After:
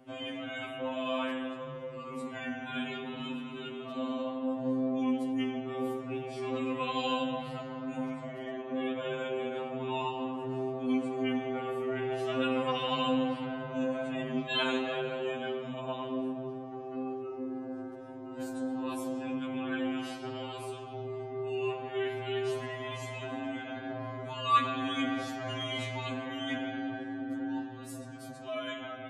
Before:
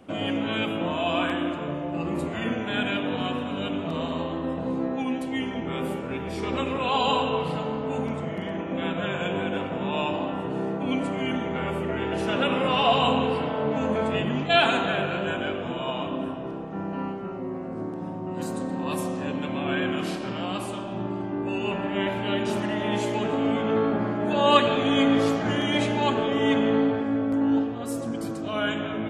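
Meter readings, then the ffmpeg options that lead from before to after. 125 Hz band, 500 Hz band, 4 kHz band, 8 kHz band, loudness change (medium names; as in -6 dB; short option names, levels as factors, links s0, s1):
-11.0 dB, -8.0 dB, -9.0 dB, -9.0 dB, -8.5 dB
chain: -af "afftfilt=real='re*2.45*eq(mod(b,6),0)':imag='im*2.45*eq(mod(b,6),0)':win_size=2048:overlap=0.75,volume=0.473"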